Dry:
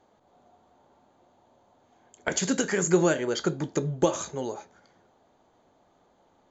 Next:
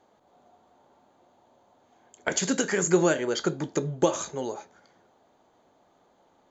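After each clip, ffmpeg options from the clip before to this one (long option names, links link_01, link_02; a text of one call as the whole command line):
ffmpeg -i in.wav -af "lowshelf=frequency=120:gain=-7.5,volume=1dB" out.wav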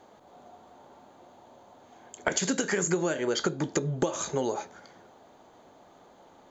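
ffmpeg -i in.wav -af "acompressor=threshold=-32dB:ratio=10,volume=8dB" out.wav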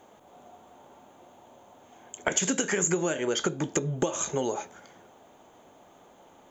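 ffmpeg -i in.wav -af "aexciter=amount=1.2:drive=4.6:freq=2400" out.wav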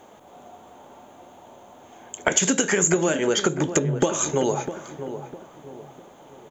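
ffmpeg -i in.wav -filter_complex "[0:a]asplit=2[link_01][link_02];[link_02]adelay=653,lowpass=frequency=1200:poles=1,volume=-10dB,asplit=2[link_03][link_04];[link_04]adelay=653,lowpass=frequency=1200:poles=1,volume=0.4,asplit=2[link_05][link_06];[link_06]adelay=653,lowpass=frequency=1200:poles=1,volume=0.4,asplit=2[link_07][link_08];[link_08]adelay=653,lowpass=frequency=1200:poles=1,volume=0.4[link_09];[link_01][link_03][link_05][link_07][link_09]amix=inputs=5:normalize=0,volume=6dB" out.wav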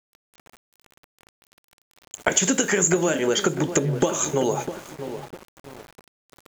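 ffmpeg -i in.wav -af "aeval=exprs='val(0)*gte(abs(val(0)),0.0126)':channel_layout=same" out.wav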